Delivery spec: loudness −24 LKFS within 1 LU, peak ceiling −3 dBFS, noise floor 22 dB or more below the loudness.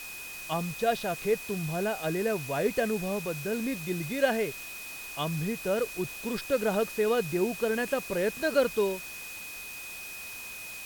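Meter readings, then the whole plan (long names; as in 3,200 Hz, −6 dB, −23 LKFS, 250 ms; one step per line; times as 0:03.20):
interfering tone 2,500 Hz; level of the tone −41 dBFS; background noise floor −41 dBFS; target noise floor −53 dBFS; integrated loudness −30.5 LKFS; sample peak −11.5 dBFS; target loudness −24.0 LKFS
→ notch filter 2,500 Hz, Q 30
broadband denoise 12 dB, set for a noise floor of −41 dBFS
level +6.5 dB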